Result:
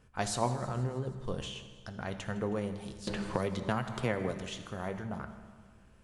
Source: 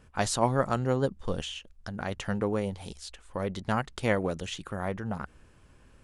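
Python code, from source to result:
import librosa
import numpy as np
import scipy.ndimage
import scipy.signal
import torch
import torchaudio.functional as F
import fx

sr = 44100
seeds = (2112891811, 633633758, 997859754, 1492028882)

y = fx.over_compress(x, sr, threshold_db=-31.0, ratio=-1.0, at=(0.47, 1.14), fade=0.02)
y = fx.echo_thinned(y, sr, ms=159, feedback_pct=63, hz=420.0, wet_db=-18.5)
y = fx.rev_fdn(y, sr, rt60_s=1.5, lf_ratio=1.2, hf_ratio=0.8, size_ms=45.0, drr_db=7.5)
y = fx.band_squash(y, sr, depth_pct=100, at=(3.07, 4.32))
y = y * librosa.db_to_amplitude(-5.5)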